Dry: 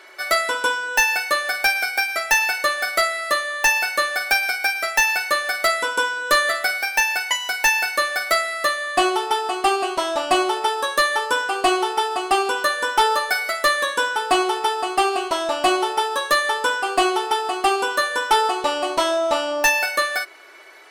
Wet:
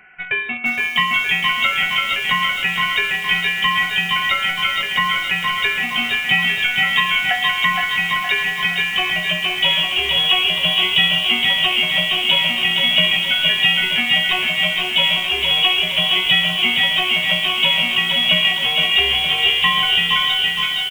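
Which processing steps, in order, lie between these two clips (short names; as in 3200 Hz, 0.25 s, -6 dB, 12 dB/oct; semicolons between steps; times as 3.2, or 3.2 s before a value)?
bands offset in time highs, lows 0.65 s, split 950 Hz; in parallel at -8 dB: bit-crush 4-bit; on the sum: dynamic EQ 2300 Hz, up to -6 dB, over -33 dBFS, Q 2.7; on a send: feedback echo 0.484 s, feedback 45%, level -6.5 dB; on the sum: inverted band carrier 3700 Hz; lo-fi delay 0.466 s, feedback 55%, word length 6-bit, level -4 dB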